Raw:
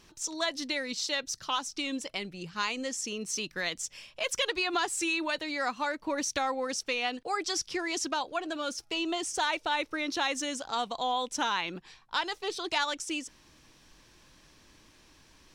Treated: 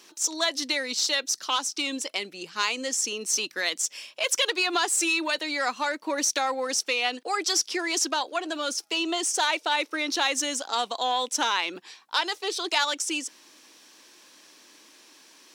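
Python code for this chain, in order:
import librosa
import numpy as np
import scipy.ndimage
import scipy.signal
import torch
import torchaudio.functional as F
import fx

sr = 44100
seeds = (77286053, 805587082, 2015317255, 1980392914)

y = fx.diode_clip(x, sr, knee_db=-18.0)
y = scipy.signal.sosfilt(scipy.signal.butter(4, 260.0, 'highpass', fs=sr, output='sos'), y)
y = fx.high_shelf(y, sr, hz=3700.0, db=7.0)
y = y * librosa.db_to_amplitude(4.0)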